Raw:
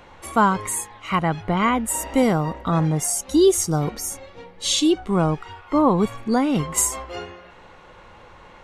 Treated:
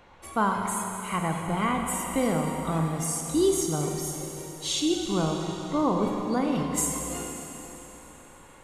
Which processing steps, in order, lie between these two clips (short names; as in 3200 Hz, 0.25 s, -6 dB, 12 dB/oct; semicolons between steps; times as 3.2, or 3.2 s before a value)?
Schroeder reverb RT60 3.6 s, combs from 33 ms, DRR 2 dB; gain -8 dB